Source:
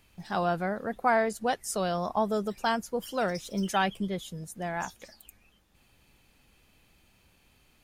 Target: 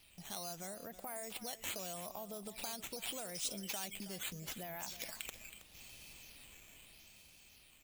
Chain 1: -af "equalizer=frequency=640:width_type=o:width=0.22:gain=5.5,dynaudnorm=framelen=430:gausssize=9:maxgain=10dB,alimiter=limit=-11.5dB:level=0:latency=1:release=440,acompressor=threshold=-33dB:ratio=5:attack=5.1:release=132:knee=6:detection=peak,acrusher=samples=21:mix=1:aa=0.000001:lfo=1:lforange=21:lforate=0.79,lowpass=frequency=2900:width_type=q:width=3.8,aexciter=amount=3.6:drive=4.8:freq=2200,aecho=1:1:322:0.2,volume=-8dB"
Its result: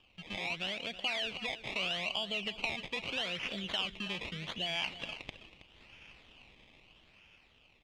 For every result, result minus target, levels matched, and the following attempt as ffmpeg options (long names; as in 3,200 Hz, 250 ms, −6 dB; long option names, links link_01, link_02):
sample-and-hold swept by an LFO: distortion +7 dB; downward compressor: peak gain reduction −5 dB; 4,000 Hz band +4.0 dB
-af "equalizer=frequency=640:width_type=o:width=0.22:gain=5.5,dynaudnorm=framelen=430:gausssize=9:maxgain=10dB,alimiter=limit=-11.5dB:level=0:latency=1:release=440,acompressor=threshold=-33dB:ratio=5:attack=5.1:release=132:knee=6:detection=peak,acrusher=samples=6:mix=1:aa=0.000001:lfo=1:lforange=6:lforate=0.79,lowpass=frequency=2900:width_type=q:width=3.8,aexciter=amount=3.6:drive=4.8:freq=2200,aecho=1:1:322:0.2,volume=-8dB"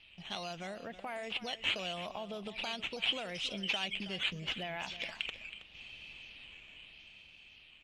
downward compressor: peak gain reduction −5 dB; 4,000 Hz band +5.0 dB
-af "equalizer=frequency=640:width_type=o:width=0.22:gain=5.5,dynaudnorm=framelen=430:gausssize=9:maxgain=10dB,alimiter=limit=-11.5dB:level=0:latency=1:release=440,acompressor=threshold=-39dB:ratio=5:attack=5.1:release=132:knee=6:detection=peak,acrusher=samples=6:mix=1:aa=0.000001:lfo=1:lforange=6:lforate=0.79,lowpass=frequency=2900:width_type=q:width=3.8,aexciter=amount=3.6:drive=4.8:freq=2200,aecho=1:1:322:0.2,volume=-8dB"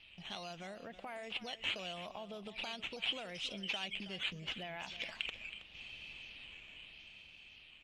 4,000 Hz band +5.5 dB
-af "equalizer=frequency=640:width_type=o:width=0.22:gain=5.5,dynaudnorm=framelen=430:gausssize=9:maxgain=10dB,alimiter=limit=-11.5dB:level=0:latency=1:release=440,acompressor=threshold=-39dB:ratio=5:attack=5.1:release=132:knee=6:detection=peak,acrusher=samples=6:mix=1:aa=0.000001:lfo=1:lforange=6:lforate=0.79,aexciter=amount=3.6:drive=4.8:freq=2200,aecho=1:1:322:0.2,volume=-8dB"